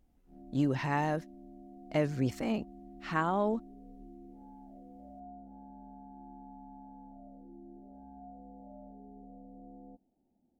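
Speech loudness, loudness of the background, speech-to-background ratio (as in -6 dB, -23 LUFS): -32.5 LUFS, -52.0 LUFS, 19.5 dB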